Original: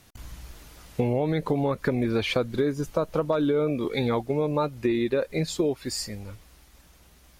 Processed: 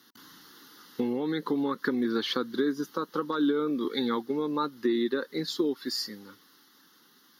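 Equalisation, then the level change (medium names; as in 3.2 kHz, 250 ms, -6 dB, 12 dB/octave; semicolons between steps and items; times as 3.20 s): Chebyshev high-pass 250 Hz, order 3; band-stop 960 Hz, Q 26; static phaser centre 2.4 kHz, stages 6; +2.5 dB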